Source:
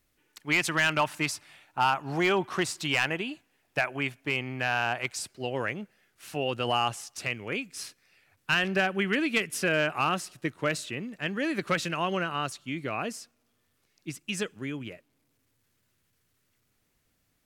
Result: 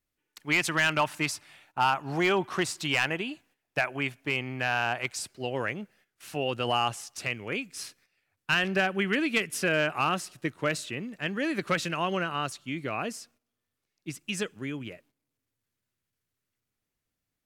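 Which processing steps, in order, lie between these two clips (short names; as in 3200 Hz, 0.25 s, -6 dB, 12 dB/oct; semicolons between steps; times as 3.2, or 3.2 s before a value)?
gate -60 dBFS, range -12 dB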